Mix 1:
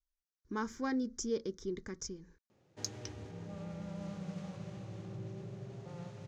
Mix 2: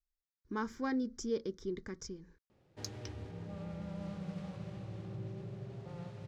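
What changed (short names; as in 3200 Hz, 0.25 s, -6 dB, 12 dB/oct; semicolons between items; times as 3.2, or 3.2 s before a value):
background: remove HPF 94 Hz; master: add bell 6500 Hz -7.5 dB 0.47 oct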